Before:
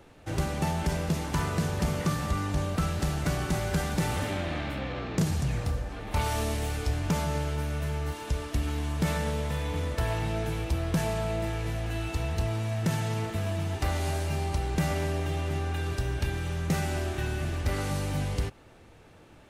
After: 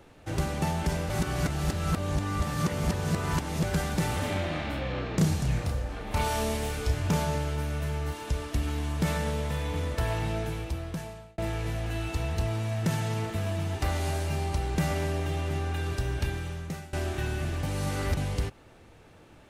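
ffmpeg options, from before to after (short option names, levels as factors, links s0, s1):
-filter_complex "[0:a]asettb=1/sr,asplit=3[s0][s1][s2];[s0]atrim=end=4.204[s3];[s1]atrim=start=4.2:end=7.35,asetpts=PTS-STARTPTS,afade=t=in:d=0.004:c=qsin,afade=t=out:st=3.146:d=0.004:c=qsin,asplit=2[s4][s5];[s5]adelay=32,volume=0.531[s6];[s4][s6]amix=inputs=2:normalize=0,atrim=end_sample=138915[s7];[s2]atrim=start=7.346[s8];[s3][s7]acrossfade=d=0.004:c1=hsin:c2=qsin[s9];[s9][s8]acrossfade=d=0.004:c1=qsin:c2=hsin,asplit=7[s10][s11][s12][s13][s14][s15][s16];[s10]atrim=end=1.102[s17];[s11]atrim=start=1.098:end=3.632,asetpts=PTS-STARTPTS,areverse[s18];[s12]atrim=start=3.628:end=11.38,asetpts=PTS-STARTPTS,afade=t=out:st=6.682:d=1.07[s19];[s13]atrim=start=11.38:end=16.93,asetpts=PTS-STARTPTS,afade=t=in:d=0.004:c=hsin,afade=t=out:st=4.87:d=0.68:silence=0.0891251[s20];[s14]atrim=start=16.93:end=17.632,asetpts=PTS-STARTPTS,afade=t=in:d=0.004:c=hsin:silence=0.0891251[s21];[s15]atrim=start=17.628:end=18.172,asetpts=PTS-STARTPTS,areverse[s22];[s16]atrim=start=18.168[s23];[s17][s18]acrossfade=d=0.004:c1=hsin:c2=hsin[s24];[s19][s20][s21]concat=n=3:v=0:a=1[s25];[s24][s25]acrossfade=d=0.004:c1=hsin:c2=hsin[s26];[s26][s22]acrossfade=d=0.004:c1=hsin:c2=hsin[s27];[s27][s23]acrossfade=d=0.004:c1=hsin:c2=hsin"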